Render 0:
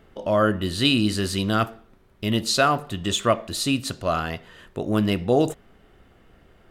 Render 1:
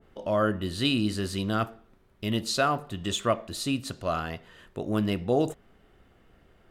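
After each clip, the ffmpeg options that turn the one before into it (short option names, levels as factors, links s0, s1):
-af "adynamicequalizer=threshold=0.0178:dfrequency=1600:dqfactor=0.7:tfrequency=1600:tqfactor=0.7:attack=5:release=100:ratio=0.375:range=2:mode=cutabove:tftype=highshelf,volume=0.562"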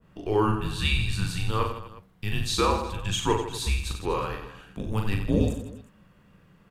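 -af "aecho=1:1:40|92|159.6|247.5|361.7:0.631|0.398|0.251|0.158|0.1,afreqshift=-210"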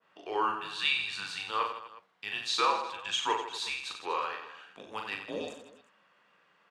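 -af "highpass=740,lowpass=5100"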